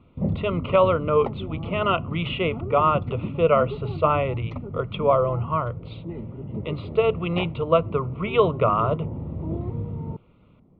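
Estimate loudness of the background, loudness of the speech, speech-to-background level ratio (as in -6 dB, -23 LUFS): -33.0 LUFS, -23.5 LUFS, 9.5 dB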